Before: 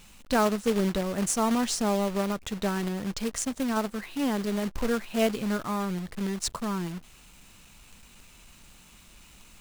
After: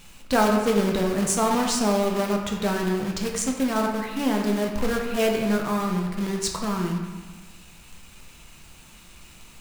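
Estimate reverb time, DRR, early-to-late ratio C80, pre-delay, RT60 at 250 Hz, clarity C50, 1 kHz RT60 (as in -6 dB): 1.4 s, 0.5 dB, 6.0 dB, 6 ms, 1.5 s, 4.0 dB, 1.4 s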